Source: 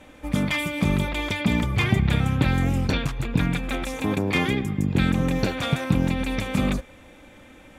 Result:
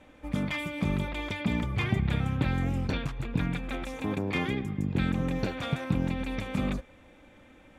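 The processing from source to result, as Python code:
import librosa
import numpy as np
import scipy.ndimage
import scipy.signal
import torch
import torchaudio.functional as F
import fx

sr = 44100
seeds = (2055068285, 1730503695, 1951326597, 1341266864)

y = fx.high_shelf(x, sr, hz=5200.0, db=-8.5)
y = y * 10.0 ** (-6.5 / 20.0)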